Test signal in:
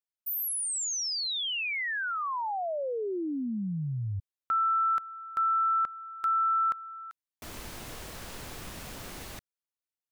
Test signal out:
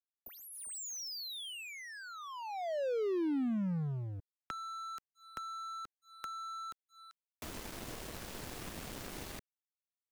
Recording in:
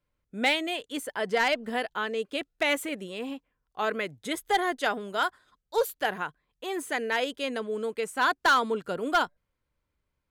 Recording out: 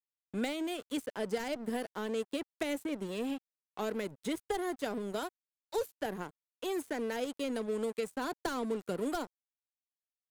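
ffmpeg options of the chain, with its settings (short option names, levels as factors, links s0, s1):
-filter_complex "[0:a]acrossover=split=180|500|5700[s0][s1][s2][s3];[s0]acompressor=threshold=0.00355:ratio=4[s4];[s1]acompressor=threshold=0.0112:ratio=4[s5];[s2]acompressor=threshold=0.00316:ratio=4[s6];[s3]acompressor=threshold=0.00224:ratio=4[s7];[s4][s5][s6][s7]amix=inputs=4:normalize=0,aeval=exprs='sgn(val(0))*max(abs(val(0))-0.00299,0)':c=same,volume=1.88"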